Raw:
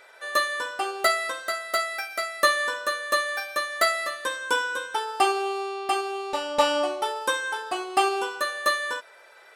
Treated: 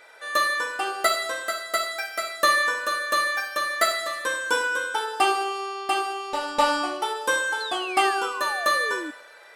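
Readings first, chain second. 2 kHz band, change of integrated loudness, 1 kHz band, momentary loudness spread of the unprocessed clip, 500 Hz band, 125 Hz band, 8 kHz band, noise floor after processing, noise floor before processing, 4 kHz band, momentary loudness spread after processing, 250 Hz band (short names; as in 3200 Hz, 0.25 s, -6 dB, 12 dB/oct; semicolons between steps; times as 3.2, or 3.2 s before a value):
+2.5 dB, +1.5 dB, +1.5 dB, 7 LU, -1.0 dB, n/a, +2.0 dB, -48 dBFS, -51 dBFS, +1.5 dB, 6 LU, +1.0 dB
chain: two-slope reverb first 0.62 s, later 1.8 s, DRR 2.5 dB; painted sound fall, 7.6–9.11, 290–4300 Hz -34 dBFS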